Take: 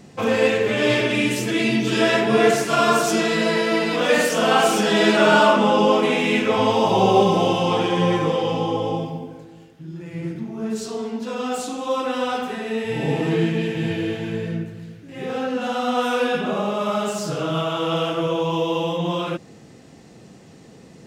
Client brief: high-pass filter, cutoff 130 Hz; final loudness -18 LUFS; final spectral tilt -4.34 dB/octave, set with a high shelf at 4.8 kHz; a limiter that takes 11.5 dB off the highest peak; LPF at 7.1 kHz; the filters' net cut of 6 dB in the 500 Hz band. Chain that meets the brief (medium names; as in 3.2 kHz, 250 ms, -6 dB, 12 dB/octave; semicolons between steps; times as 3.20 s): high-pass 130 Hz; low-pass 7.1 kHz; peaking EQ 500 Hz -7.5 dB; treble shelf 4.8 kHz +3 dB; trim +7.5 dB; peak limiter -8 dBFS